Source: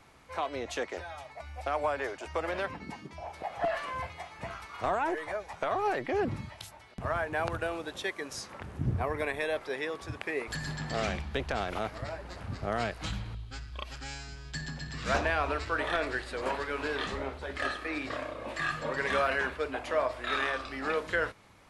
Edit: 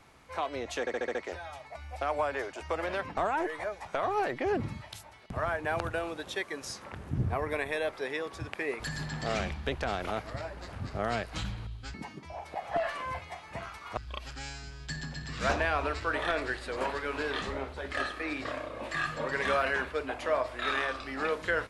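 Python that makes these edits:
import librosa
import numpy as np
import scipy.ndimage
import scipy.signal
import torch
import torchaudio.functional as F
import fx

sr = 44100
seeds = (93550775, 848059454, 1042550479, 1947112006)

y = fx.edit(x, sr, fx.stutter(start_s=0.8, slice_s=0.07, count=6),
    fx.move(start_s=2.82, length_s=2.03, to_s=13.62), tone=tone)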